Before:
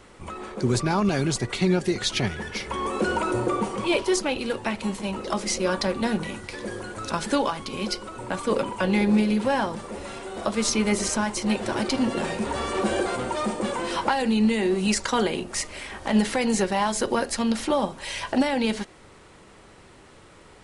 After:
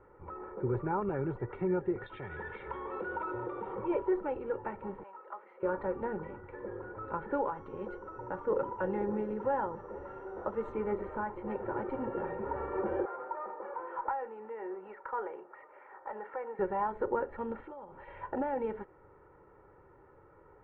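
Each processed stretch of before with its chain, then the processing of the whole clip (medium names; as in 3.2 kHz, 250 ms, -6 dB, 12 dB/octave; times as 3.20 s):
2.06–3.75 s: peaking EQ 2.2 kHz +6 dB 2.8 oct + compression 5:1, threshold -27 dBFS + resonant low-pass 3.7 kHz, resonance Q 7.5
5.03–5.63 s: high-pass 1.1 kHz + treble shelf 2.8 kHz -10.5 dB
7.53–10.72 s: band-stop 2.3 kHz, Q 14 + whistle 5.8 kHz -28 dBFS + peaking EQ 7.9 kHz +15 dB 1 oct
13.05–16.59 s: band-pass 640–2000 Hz + valve stage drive 16 dB, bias 0.2
17.60–18.08 s: compression 8:1, threshold -35 dBFS + treble shelf 2.3 kHz +9 dB
whole clip: inverse Chebyshev low-pass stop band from 4.9 kHz, stop band 60 dB; bass shelf 64 Hz -7 dB; comb 2.2 ms, depth 62%; trim -9 dB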